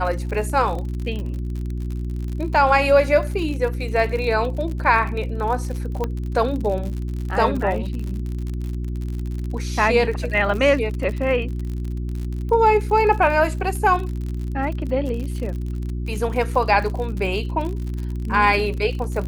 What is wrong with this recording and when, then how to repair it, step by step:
crackle 58 per s -28 dBFS
hum 60 Hz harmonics 6 -26 dBFS
6.04 s: pop -12 dBFS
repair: de-click; de-hum 60 Hz, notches 6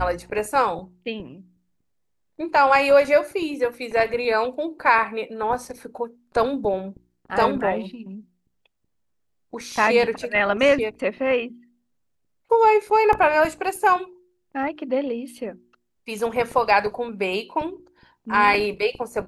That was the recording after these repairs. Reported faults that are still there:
nothing left

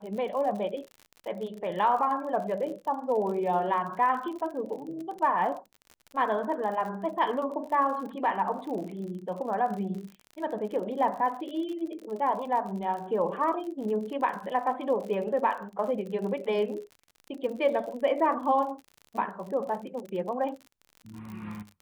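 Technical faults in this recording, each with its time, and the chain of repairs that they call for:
crackle 53 per s -37 dBFS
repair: de-click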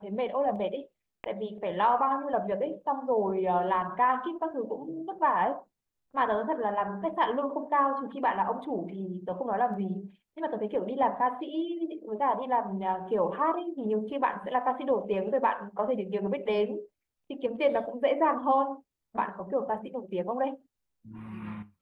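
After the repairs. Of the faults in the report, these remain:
nothing left

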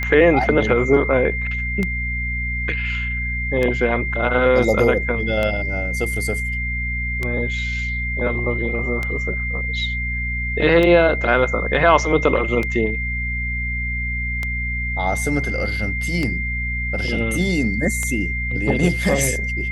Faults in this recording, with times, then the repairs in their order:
hum 60 Hz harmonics 4 -26 dBFS
tick 33 1/3 rpm -10 dBFS
whine 2.1 kHz -24 dBFS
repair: de-click; de-hum 60 Hz, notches 4; band-stop 2.1 kHz, Q 30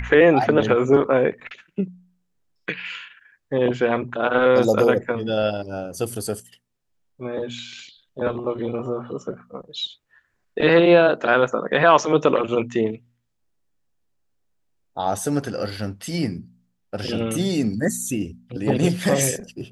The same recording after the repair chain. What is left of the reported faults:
nothing left

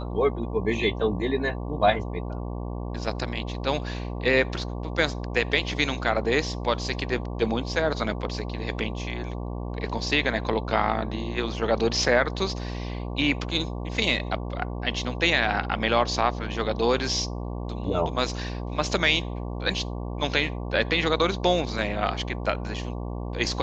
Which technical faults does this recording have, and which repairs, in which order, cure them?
buzz 60 Hz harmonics 19 -32 dBFS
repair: de-hum 60 Hz, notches 19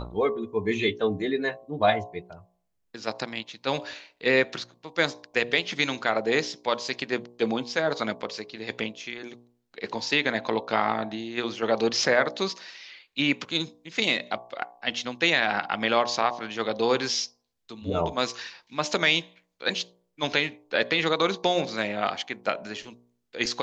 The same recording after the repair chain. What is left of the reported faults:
nothing left

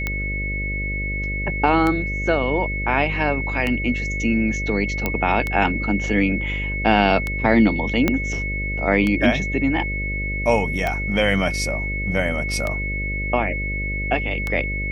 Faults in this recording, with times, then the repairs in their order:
buzz 50 Hz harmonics 12 -27 dBFS
tick 33 1/3 rpm -10 dBFS
whine 2.2 kHz -26 dBFS
5.06 s: pop -7 dBFS
8.08 s: pop -5 dBFS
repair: de-click; de-hum 50 Hz, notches 12; band-stop 2.2 kHz, Q 30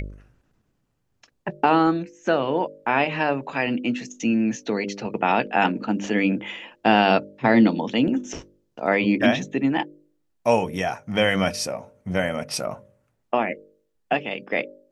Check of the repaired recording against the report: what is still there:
8.08 s: pop

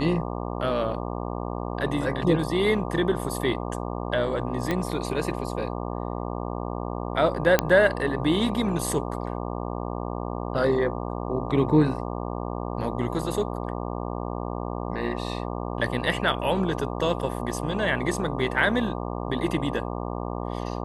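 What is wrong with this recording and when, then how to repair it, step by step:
buzz 60 Hz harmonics 20 -31 dBFS
4.71 s: pop -12 dBFS
7.59 s: pop -4 dBFS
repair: de-click; de-hum 60 Hz, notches 20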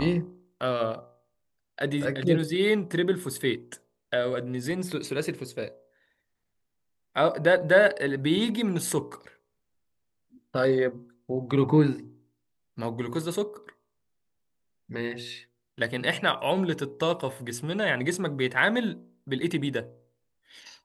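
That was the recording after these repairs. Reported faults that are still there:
4.71 s: pop

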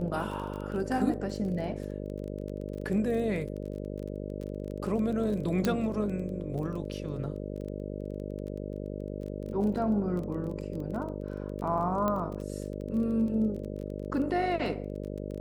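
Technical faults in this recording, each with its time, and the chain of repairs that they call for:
buzz 50 Hz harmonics 12 -37 dBFS
crackle 20 per s -37 dBFS
5.65 s: pop -14 dBFS
12.08 s: pop -17 dBFS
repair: de-click; de-hum 50 Hz, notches 12

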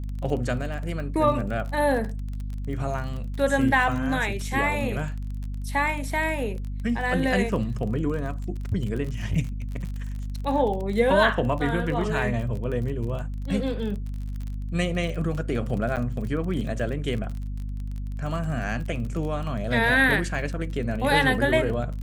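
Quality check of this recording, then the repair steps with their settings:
crackle 33 per s -32 dBFS
hum 50 Hz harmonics 5 -31 dBFS
15.96–15.97 s: dropout 8 ms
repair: de-click; de-hum 50 Hz, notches 5; interpolate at 15.96 s, 8 ms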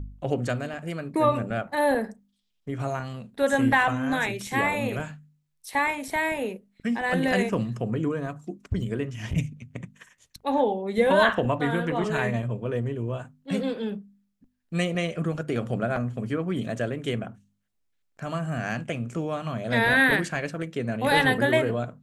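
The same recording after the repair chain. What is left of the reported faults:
nothing left

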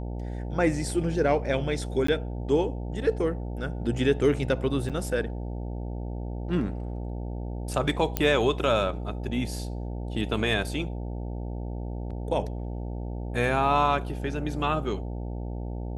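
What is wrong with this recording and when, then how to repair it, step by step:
buzz 60 Hz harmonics 15 -33 dBFS
2.07–2.08 s: dropout 14 ms
4.89–4.90 s: dropout 6.8 ms
8.17 s: pop -9 dBFS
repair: de-click; de-hum 60 Hz, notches 15; interpolate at 2.07 s, 14 ms; interpolate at 4.89 s, 6.8 ms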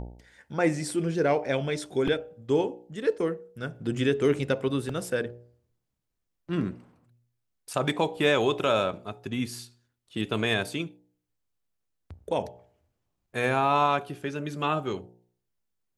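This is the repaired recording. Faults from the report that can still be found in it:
nothing left

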